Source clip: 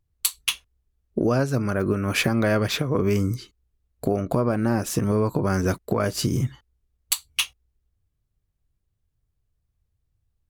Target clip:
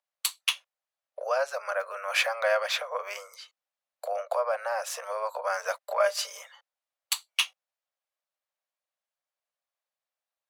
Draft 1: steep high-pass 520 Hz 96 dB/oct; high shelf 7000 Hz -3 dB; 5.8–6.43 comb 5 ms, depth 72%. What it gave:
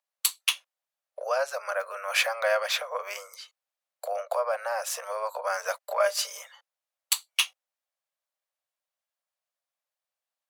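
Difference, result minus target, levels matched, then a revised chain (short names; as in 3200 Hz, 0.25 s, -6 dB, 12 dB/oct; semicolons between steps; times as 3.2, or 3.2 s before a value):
8000 Hz band +3.0 dB
steep high-pass 520 Hz 96 dB/oct; high shelf 7000 Hz -10 dB; 5.8–6.43 comb 5 ms, depth 72%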